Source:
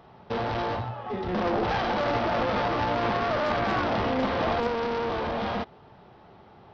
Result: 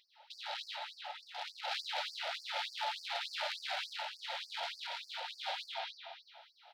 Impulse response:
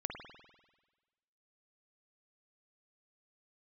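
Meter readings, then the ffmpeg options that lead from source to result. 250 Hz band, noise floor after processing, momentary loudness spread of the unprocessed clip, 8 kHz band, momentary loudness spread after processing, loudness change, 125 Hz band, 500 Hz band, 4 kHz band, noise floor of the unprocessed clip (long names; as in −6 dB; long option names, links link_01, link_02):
below −40 dB, −66 dBFS, 6 LU, can't be measured, 10 LU, −12.5 dB, below −40 dB, −22.0 dB, −0.5 dB, −53 dBFS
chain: -filter_complex "[0:a]asplit=2[link_01][link_02];[link_02]adelay=22,volume=-13dB[link_03];[link_01][link_03]amix=inputs=2:normalize=0,aecho=1:1:334|668|1002:0.299|0.0687|0.0158[link_04];[1:a]atrim=start_sample=2205[link_05];[link_04][link_05]afir=irnorm=-1:irlink=0,asplit=2[link_06][link_07];[link_07]volume=30dB,asoftclip=hard,volume=-30dB,volume=-4dB[link_08];[link_06][link_08]amix=inputs=2:normalize=0,dynaudnorm=framelen=270:gausssize=11:maxgain=5dB,equalizer=frequency=250:width_type=o:width=0.67:gain=8,equalizer=frequency=630:width_type=o:width=0.67:gain=-7,equalizer=frequency=1600:width_type=o:width=0.67:gain=-8,equalizer=frequency=4000:width_type=o:width=0.67:gain=7,areverse,acompressor=threshold=-22dB:ratio=20,areverse,asuperstop=centerf=1100:order=4:qfactor=3.2,lowshelf=frequency=290:gain=-10.5,afftfilt=real='re*gte(b*sr/1024,510*pow(4500/510,0.5+0.5*sin(2*PI*3.4*pts/sr)))':imag='im*gte(b*sr/1024,510*pow(4500/510,0.5+0.5*sin(2*PI*3.4*pts/sr)))':win_size=1024:overlap=0.75,volume=-4.5dB"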